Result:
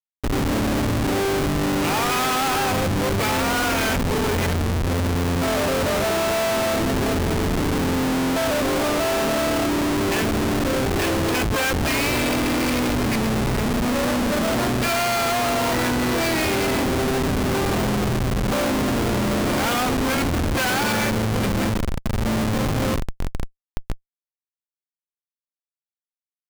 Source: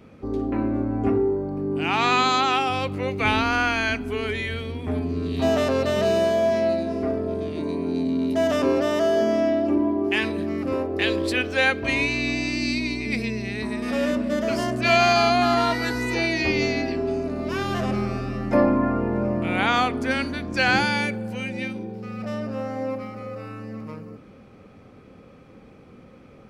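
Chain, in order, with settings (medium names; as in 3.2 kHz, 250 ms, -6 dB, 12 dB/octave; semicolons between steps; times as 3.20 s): harmony voices +5 st -16 dB, +12 st -8 dB; feedback echo behind a high-pass 285 ms, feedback 68%, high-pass 1.5 kHz, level -15 dB; Schmitt trigger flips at -26 dBFS; trim +2 dB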